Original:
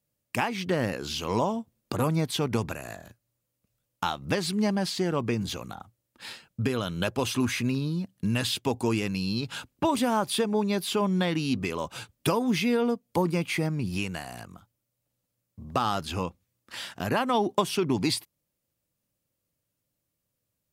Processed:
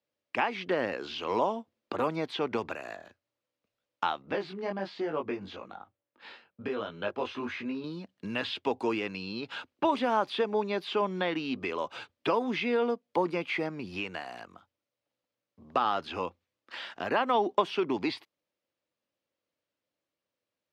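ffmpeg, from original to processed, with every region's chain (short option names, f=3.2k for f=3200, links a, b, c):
-filter_complex "[0:a]asettb=1/sr,asplit=3[a][b][c];[a]atrim=end=4.224[d];[b]atrim=start=4.22:end=7.84,asetpts=PTS-STARTPTS,afade=t=in:d=0.004:c=qsin,afade=t=out:st=3.616:d=0.004:c=qsin,aemphasis=mode=reproduction:type=75fm,flanger=delay=19:depth=2.4:speed=1.1[e];[c]atrim=start=7.836[f];[d][e]acrossfade=d=0.004:c1=hsin:c2=qsin[g];[g][f]acrossfade=d=0.004:c1=qsin:c2=hsin,acrossover=split=270 4900:gain=0.0794 1 0.0631[h][i][j];[h][i][j]amix=inputs=3:normalize=0,acrossover=split=3800[k][l];[l]acompressor=threshold=-52dB:ratio=4:attack=1:release=60[m];[k][m]amix=inputs=2:normalize=0,equalizer=f=89:t=o:w=0.27:g=8"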